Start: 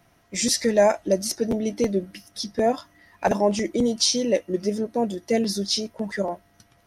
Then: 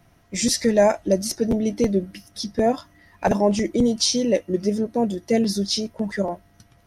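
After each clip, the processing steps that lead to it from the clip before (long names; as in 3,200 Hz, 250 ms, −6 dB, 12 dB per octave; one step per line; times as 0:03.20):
low-shelf EQ 200 Hz +8.5 dB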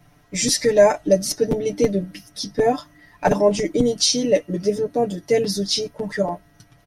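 comb filter 6.8 ms, depth 91%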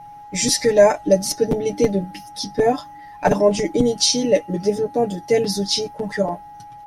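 steady tone 830 Hz −38 dBFS
level +1 dB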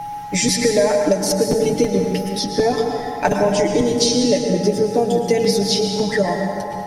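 downward compressor, threshold −17 dBFS, peak gain reduction 9.5 dB
convolution reverb RT60 2.0 s, pre-delay 98 ms, DRR 3.5 dB
multiband upward and downward compressor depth 40%
level +3.5 dB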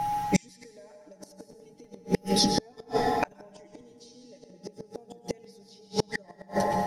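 gate with flip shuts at −10 dBFS, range −35 dB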